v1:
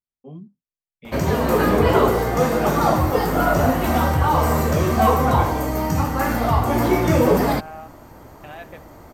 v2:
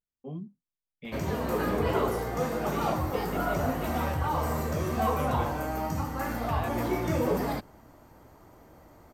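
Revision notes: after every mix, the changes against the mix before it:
second voice: entry −1.95 s
background −11.0 dB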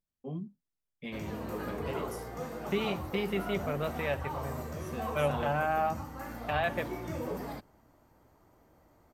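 second voice +8.0 dB
background −9.5 dB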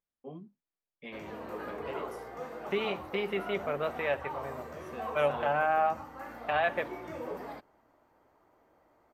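second voice +3.0 dB
master: add bass and treble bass −13 dB, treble −11 dB

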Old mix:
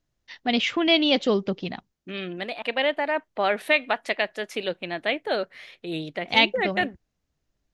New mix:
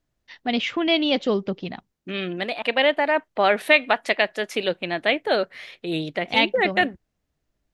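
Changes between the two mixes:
first voice: add high-shelf EQ 4,500 Hz −6 dB
second voice +4.5 dB

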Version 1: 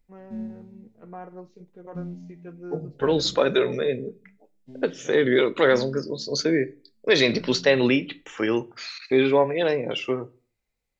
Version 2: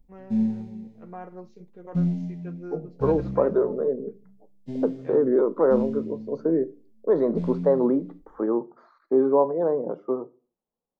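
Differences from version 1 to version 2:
second voice: add elliptic band-pass filter 170–1,100 Hz, stop band 40 dB
background +11.0 dB

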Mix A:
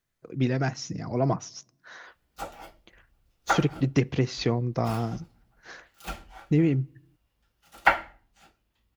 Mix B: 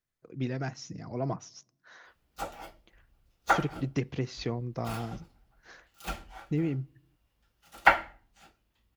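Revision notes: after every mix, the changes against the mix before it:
speech −7.5 dB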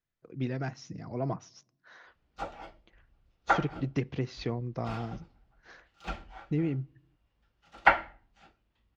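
speech: add high-shelf EQ 5,300 Hz +6 dB
master: add high-frequency loss of the air 150 metres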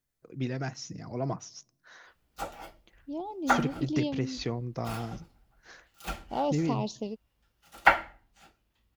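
second voice: unmuted
master: remove high-frequency loss of the air 150 metres

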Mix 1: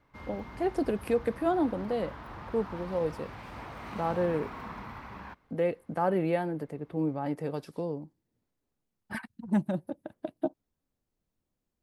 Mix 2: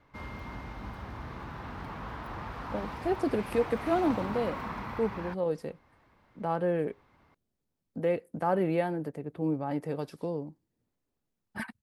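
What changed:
speech: entry +2.45 s
background +4.0 dB

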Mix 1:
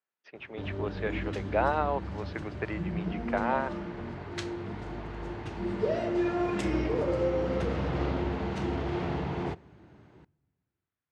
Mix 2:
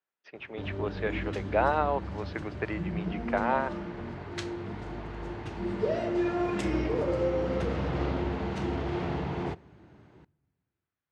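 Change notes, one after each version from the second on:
speech: send +10.0 dB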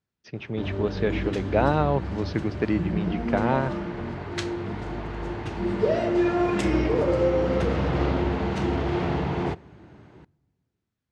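speech: remove band-pass filter 600–2,700 Hz
background +6.0 dB

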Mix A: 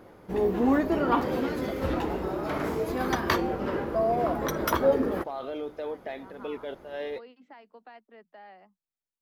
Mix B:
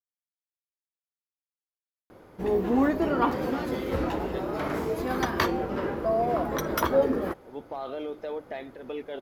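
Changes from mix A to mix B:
first voice: muted
second voice: entry +2.45 s
background: entry +2.10 s

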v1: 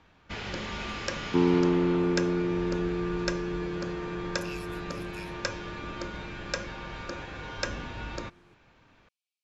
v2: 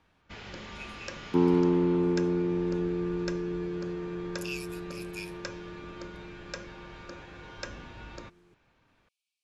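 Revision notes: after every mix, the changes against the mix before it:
speech +6.0 dB
first sound −7.5 dB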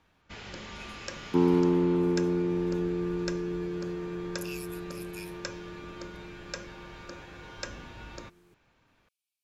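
speech −6.5 dB
master: remove high-frequency loss of the air 57 metres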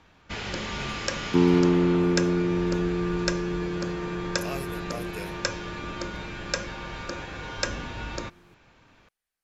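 speech: remove linear-phase brick-wall high-pass 2,200 Hz
first sound +10.0 dB
second sound: add low-shelf EQ 250 Hz +7.5 dB

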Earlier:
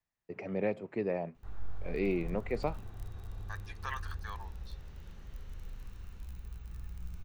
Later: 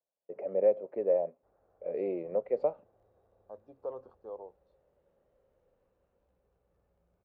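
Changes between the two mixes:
first voice +11.0 dB
second voice: remove high-pass with resonance 1,800 Hz, resonance Q 8.1
master: add resonant band-pass 550 Hz, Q 5.6

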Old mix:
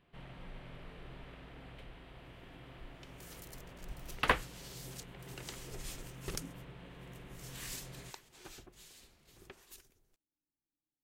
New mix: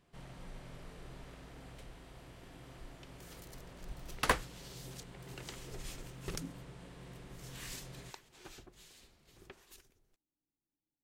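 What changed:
speech +3.5 dB
first sound: add high shelf with overshoot 4,400 Hz +13 dB, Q 1.5
master: add high-shelf EQ 7,700 Hz −6 dB

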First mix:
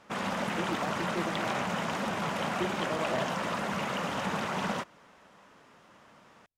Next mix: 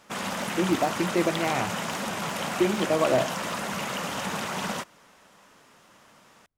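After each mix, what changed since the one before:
speech +11.5 dB
background: remove low-pass filter 2,500 Hz 6 dB per octave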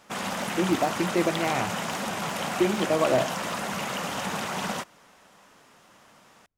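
background: add parametric band 750 Hz +3 dB 0.22 octaves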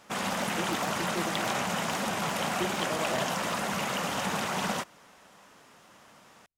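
speech −11.5 dB

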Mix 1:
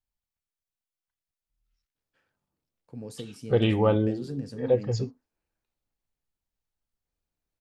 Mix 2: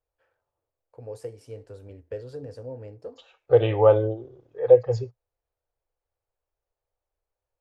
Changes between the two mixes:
first voice: entry −1.95 s
master: add drawn EQ curve 120 Hz 0 dB, 180 Hz −23 dB, 500 Hz +9 dB, 4,100 Hz −7 dB

